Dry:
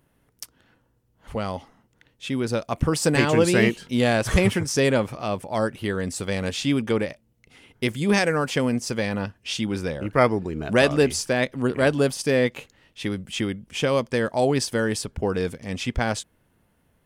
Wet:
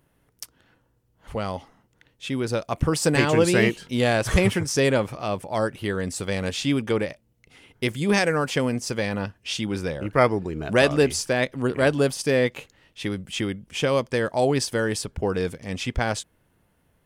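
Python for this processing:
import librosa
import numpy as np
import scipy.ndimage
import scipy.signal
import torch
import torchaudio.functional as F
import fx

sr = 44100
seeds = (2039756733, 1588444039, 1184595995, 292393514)

y = fx.peak_eq(x, sr, hz=230.0, db=-4.0, octaves=0.26)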